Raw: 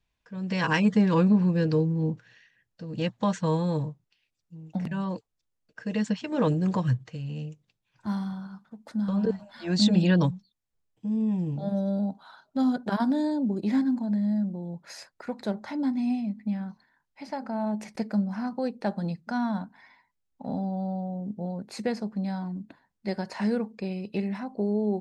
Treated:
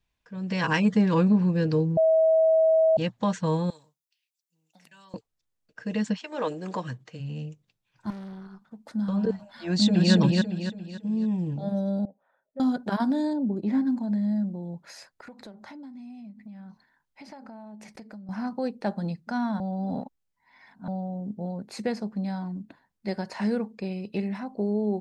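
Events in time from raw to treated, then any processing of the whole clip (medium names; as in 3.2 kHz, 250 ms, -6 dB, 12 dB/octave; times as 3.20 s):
1.97–2.97 s: bleep 643 Hz -16.5 dBFS
3.70–5.14 s: differentiator
6.17–7.19 s: high-pass 670 Hz -> 180 Hz
8.10–8.62 s: valve stage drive 37 dB, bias 0.65
9.67–10.13 s: echo throw 280 ms, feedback 40%, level -1.5 dB
12.05–12.60 s: cascade formant filter e
13.33–13.87 s: treble shelf 2.5 kHz -12 dB
14.79–18.29 s: compression 8:1, threshold -41 dBFS
19.60–20.88 s: reverse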